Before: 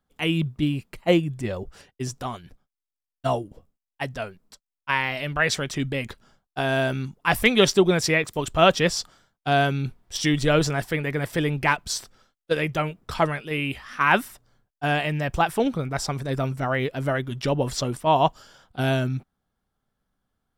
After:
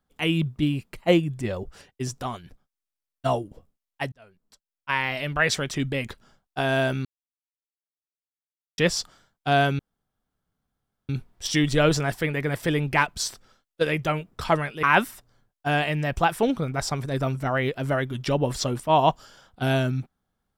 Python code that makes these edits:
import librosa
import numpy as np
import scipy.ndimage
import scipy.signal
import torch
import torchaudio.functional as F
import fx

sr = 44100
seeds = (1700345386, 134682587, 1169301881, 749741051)

y = fx.edit(x, sr, fx.fade_in_span(start_s=4.12, length_s=1.01),
    fx.silence(start_s=7.05, length_s=1.73),
    fx.insert_room_tone(at_s=9.79, length_s=1.3),
    fx.cut(start_s=13.53, length_s=0.47), tone=tone)